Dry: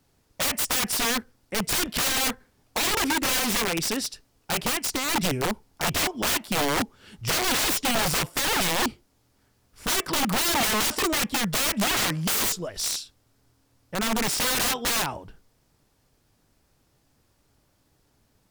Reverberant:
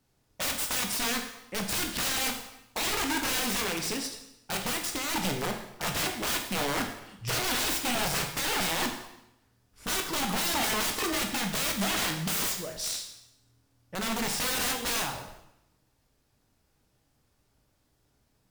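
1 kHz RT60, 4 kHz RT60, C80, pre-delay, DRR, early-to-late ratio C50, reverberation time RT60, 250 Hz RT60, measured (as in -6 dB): 0.85 s, 0.80 s, 9.0 dB, 6 ms, 2.5 dB, 7.0 dB, 0.85 s, 0.90 s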